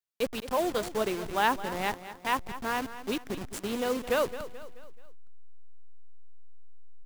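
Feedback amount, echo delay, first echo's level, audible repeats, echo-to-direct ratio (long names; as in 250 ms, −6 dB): 46%, 216 ms, −13.5 dB, 4, −12.5 dB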